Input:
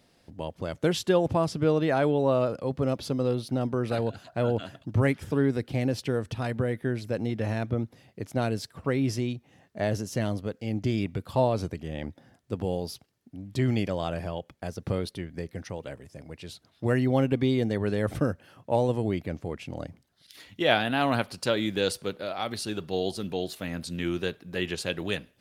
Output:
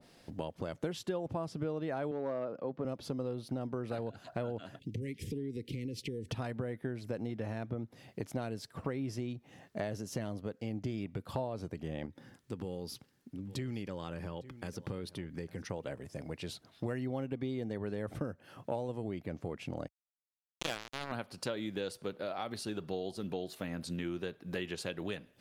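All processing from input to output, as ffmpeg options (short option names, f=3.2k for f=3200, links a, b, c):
-filter_complex "[0:a]asettb=1/sr,asplit=3[a][b][c];[a]atrim=end=2.114[d];[b]atrim=start=2.11:end=2.85,asetpts=PTS-STARTPTS,afade=t=in:d=0.004:c=qsin,afade=t=out:st=0.736:d=0.004:c=qsin,aemphasis=mode=reproduction:type=75kf,asoftclip=type=hard:threshold=-18dB,highpass=190,lowpass=6.9k[e];[c]atrim=start=2.846[f];[d][e]acrossfade=d=0.004:c1=hsin:c2=qsin[g];[g][f]acrossfade=d=0.004:c1=qsin:c2=hsin,asettb=1/sr,asplit=3[h][i][j];[h]atrim=end=4.794[k];[i]atrim=start=4.79:end=6.29,asetpts=PTS-STARTPTS,afade=t=in:d=0.004:c=qsin,afade=t=out:st=1.496:d=0.004:c=qsin,acompressor=threshold=-36dB:ratio=3:attack=3.2:release=140:knee=1:detection=peak,asuperstop=centerf=990:order=12:qfactor=0.65[l];[j]atrim=start=6.286[m];[k][l]acrossfade=d=0.004:c1=hsin:c2=qsin[n];[n][m]acrossfade=d=0.004:c1=qsin:c2=hsin,asettb=1/sr,asplit=3[o][p][q];[o]atrim=end=12.064[r];[p]atrim=start=12.06:end=15.71,asetpts=PTS-STARTPTS,afade=t=in:d=0.004:c=qsin,afade=t=out:st=3.646:d=0.004:c=qsin,equalizer=f=680:t=o:w=0.3:g=-14.5,acompressor=threshold=-47dB:ratio=1.5:attack=3.2:release=140:knee=1:detection=peak,aecho=1:1:856:0.1,atrim=end_sample=160965[s];[q]atrim=start=15.706[t];[r][s]acrossfade=d=0.004:c1=hsin:c2=qsin[u];[u][t]acrossfade=d=0.004:c1=qsin:c2=hsin,asettb=1/sr,asplit=3[v][w][x];[v]atrim=end=19.884[y];[w]atrim=start=19.88:end=21.12,asetpts=PTS-STARTPTS,afade=t=in:d=0.004:c=qsin,afade=t=out:st=1.236:d=0.004:c=qsin,highpass=f=110:p=1,equalizer=f=2.1k:t=o:w=0.32:g=-7,acrusher=bits=2:mix=0:aa=0.5[z];[x]atrim=start=21.116[aa];[y][z]acrossfade=d=0.004:c1=hsin:c2=qsin[ab];[ab][aa]acrossfade=d=0.004:c1=qsin:c2=hsin,equalizer=f=65:t=o:w=1.1:g=-6,acompressor=threshold=-38dB:ratio=5,adynamicequalizer=threshold=0.00126:dfrequency=1800:dqfactor=0.7:tfrequency=1800:tqfactor=0.7:attack=5:release=100:ratio=0.375:range=2.5:mode=cutabove:tftype=highshelf,volume=3dB"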